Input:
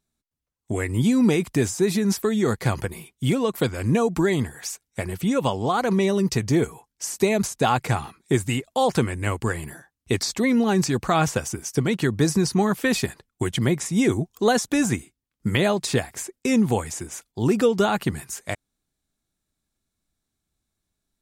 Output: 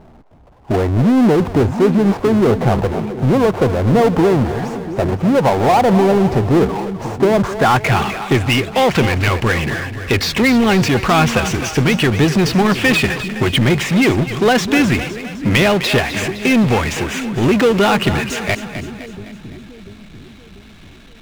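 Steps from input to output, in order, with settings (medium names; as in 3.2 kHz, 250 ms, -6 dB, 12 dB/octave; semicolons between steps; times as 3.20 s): low-pass sweep 790 Hz -> 2.8 kHz, 7.19–7.97 s; power-law waveshaper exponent 0.5; two-band feedback delay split 380 Hz, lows 691 ms, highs 256 ms, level -11 dB; trim -1 dB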